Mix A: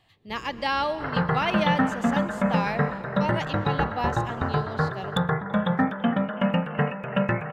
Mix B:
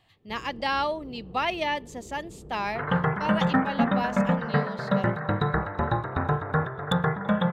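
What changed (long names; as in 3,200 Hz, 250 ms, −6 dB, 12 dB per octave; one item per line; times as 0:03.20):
second sound: entry +1.75 s
reverb: off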